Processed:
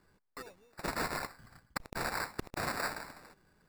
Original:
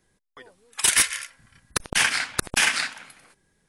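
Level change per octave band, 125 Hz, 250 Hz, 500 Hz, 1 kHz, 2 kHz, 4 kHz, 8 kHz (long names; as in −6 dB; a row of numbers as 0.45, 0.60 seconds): −5.0, −3.5, −2.0, −5.0, −15.0, −19.5, −23.5 decibels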